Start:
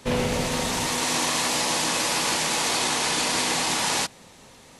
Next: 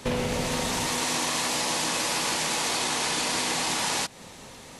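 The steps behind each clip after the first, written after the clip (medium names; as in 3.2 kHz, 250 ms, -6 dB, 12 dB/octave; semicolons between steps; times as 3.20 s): compression 3:1, threshold -31 dBFS, peak gain reduction 8.5 dB; trim +4.5 dB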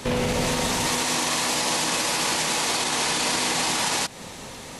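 peak limiter -21 dBFS, peak gain reduction 7.5 dB; trim +6.5 dB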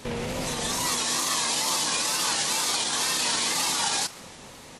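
frequency-shifting echo 149 ms, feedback 58%, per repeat +99 Hz, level -16 dB; spectral noise reduction 7 dB; wow and flutter 94 cents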